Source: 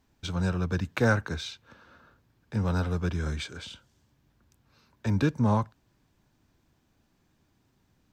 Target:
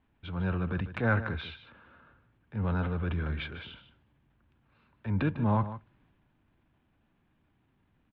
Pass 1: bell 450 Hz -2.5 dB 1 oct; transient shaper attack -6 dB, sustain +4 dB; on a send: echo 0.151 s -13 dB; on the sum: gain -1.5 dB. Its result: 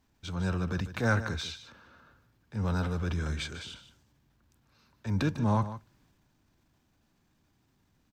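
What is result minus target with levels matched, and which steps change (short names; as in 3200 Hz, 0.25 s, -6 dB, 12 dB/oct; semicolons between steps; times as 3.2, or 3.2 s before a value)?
4000 Hz band +5.5 dB
add first: steep low-pass 3200 Hz 36 dB/oct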